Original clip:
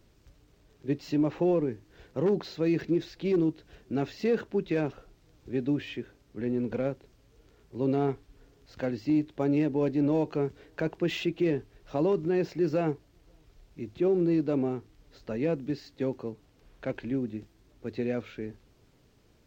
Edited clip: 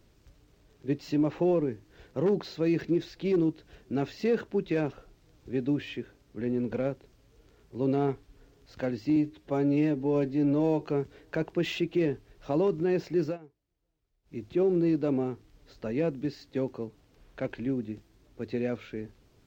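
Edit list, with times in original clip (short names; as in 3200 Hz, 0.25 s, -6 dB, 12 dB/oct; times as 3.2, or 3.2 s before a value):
9.16–10.26 stretch 1.5×
12.7–13.81 dip -22 dB, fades 0.13 s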